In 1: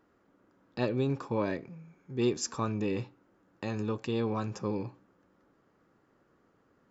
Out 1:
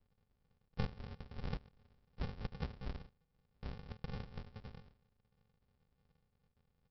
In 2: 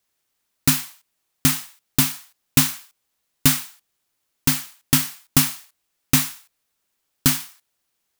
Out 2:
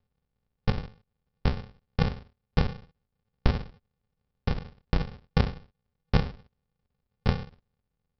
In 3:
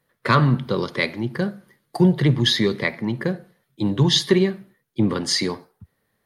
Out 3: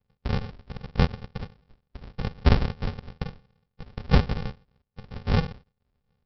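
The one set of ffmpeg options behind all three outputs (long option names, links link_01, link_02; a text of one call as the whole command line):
ffmpeg -i in.wav -af "highpass=frequency=2000:width_type=q:width=1.6,aresample=11025,acrusher=samples=34:mix=1:aa=0.000001,aresample=44100,volume=1dB" out.wav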